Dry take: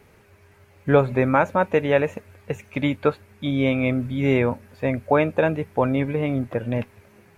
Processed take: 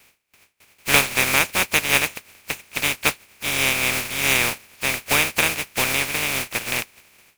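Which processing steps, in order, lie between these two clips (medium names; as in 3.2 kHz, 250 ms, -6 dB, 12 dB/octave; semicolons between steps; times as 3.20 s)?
spectral contrast reduction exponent 0.18; gate with hold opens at -41 dBFS; peaking EQ 2.4 kHz +10 dB 0.45 oct; trim -2.5 dB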